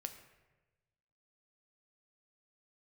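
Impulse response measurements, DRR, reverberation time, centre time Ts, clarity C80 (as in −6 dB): 7.0 dB, 1.2 s, 15 ms, 11.5 dB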